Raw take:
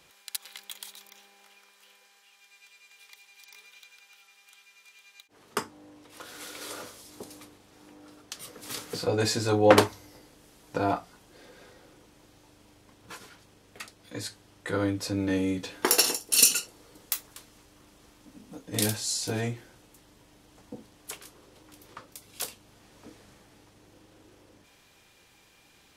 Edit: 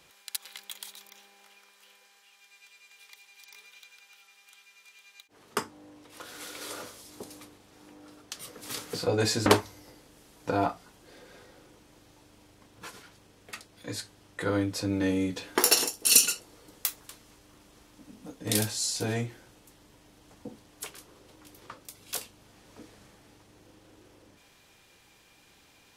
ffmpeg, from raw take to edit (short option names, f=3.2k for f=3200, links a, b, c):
-filter_complex "[0:a]asplit=2[a][b];[a]atrim=end=9.462[c];[b]atrim=start=9.728[d];[c][d]acrossfade=d=0.004:c1=hsin:c2=hsin"